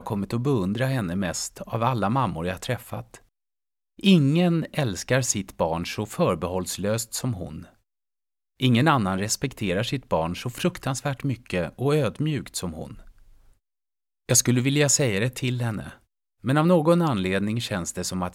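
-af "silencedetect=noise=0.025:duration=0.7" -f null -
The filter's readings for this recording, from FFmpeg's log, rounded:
silence_start: 3.15
silence_end: 3.99 | silence_duration: 0.84
silence_start: 7.63
silence_end: 8.60 | silence_duration: 0.97
silence_start: 12.91
silence_end: 14.29 | silence_duration: 1.38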